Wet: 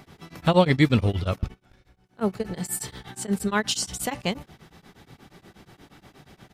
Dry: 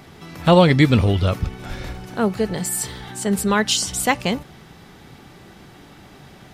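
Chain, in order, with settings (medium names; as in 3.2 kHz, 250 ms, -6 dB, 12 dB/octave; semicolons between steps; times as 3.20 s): 1.38–2.50 s: gate -25 dBFS, range -22 dB; speakerphone echo 120 ms, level -30 dB; tremolo of two beating tones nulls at 8.4 Hz; trim -3.5 dB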